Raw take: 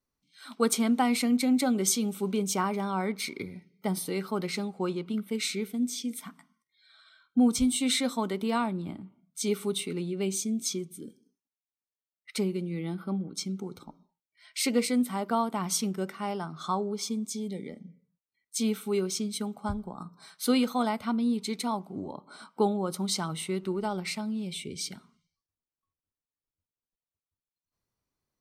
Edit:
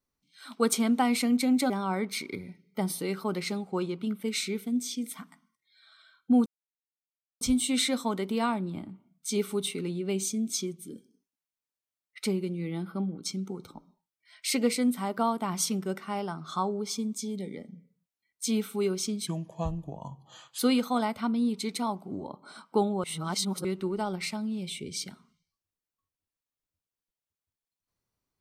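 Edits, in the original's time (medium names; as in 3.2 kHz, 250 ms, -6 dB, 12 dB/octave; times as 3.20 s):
1.70–2.77 s: delete
7.53 s: insert silence 0.95 s
19.39–20.43 s: speed 79%
22.88–23.49 s: reverse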